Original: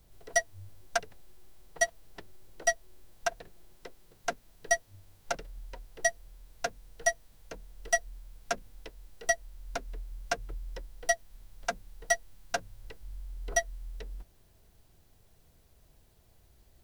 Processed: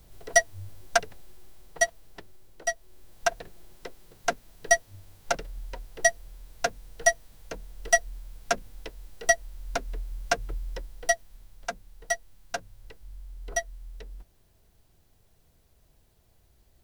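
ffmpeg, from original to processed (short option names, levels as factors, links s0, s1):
-af "volume=5.62,afade=t=out:st=0.99:d=1.68:silence=0.354813,afade=t=in:st=2.67:d=0.63:silence=0.398107,afade=t=out:st=10.56:d=1.13:silence=0.446684"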